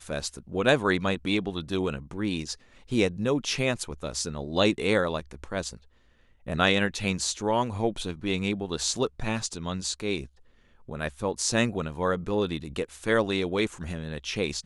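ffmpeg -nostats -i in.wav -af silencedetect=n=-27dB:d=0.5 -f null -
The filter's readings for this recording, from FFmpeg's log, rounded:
silence_start: 5.69
silence_end: 6.48 | silence_duration: 0.80
silence_start: 10.21
silence_end: 10.91 | silence_duration: 0.71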